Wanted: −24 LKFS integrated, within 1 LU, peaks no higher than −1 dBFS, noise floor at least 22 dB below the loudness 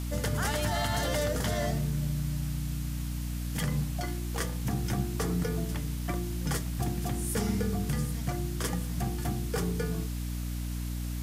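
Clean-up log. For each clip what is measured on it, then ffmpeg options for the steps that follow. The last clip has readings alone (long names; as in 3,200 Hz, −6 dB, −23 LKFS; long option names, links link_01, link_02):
mains hum 60 Hz; hum harmonics up to 300 Hz; level of the hum −31 dBFS; background noise floor −34 dBFS; target noise floor −54 dBFS; integrated loudness −32.0 LKFS; sample peak −17.5 dBFS; target loudness −24.0 LKFS
→ -af "bandreject=frequency=60:width_type=h:width=6,bandreject=frequency=120:width_type=h:width=6,bandreject=frequency=180:width_type=h:width=6,bandreject=frequency=240:width_type=h:width=6,bandreject=frequency=300:width_type=h:width=6"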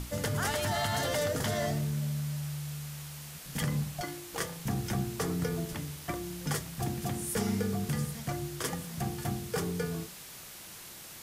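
mains hum none found; background noise floor −47 dBFS; target noise floor −56 dBFS
→ -af "afftdn=noise_reduction=9:noise_floor=-47"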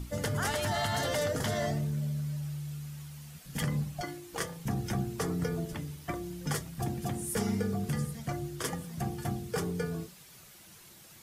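background noise floor −54 dBFS; target noise floor −56 dBFS
→ -af "afftdn=noise_reduction=6:noise_floor=-54"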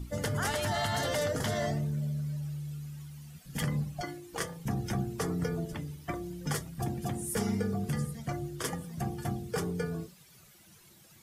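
background noise floor −58 dBFS; integrated loudness −34.0 LKFS; sample peak −19.5 dBFS; target loudness −24.0 LKFS
→ -af "volume=10dB"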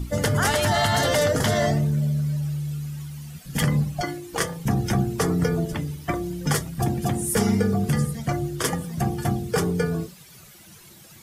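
integrated loudness −24.0 LKFS; sample peak −9.5 dBFS; background noise floor −48 dBFS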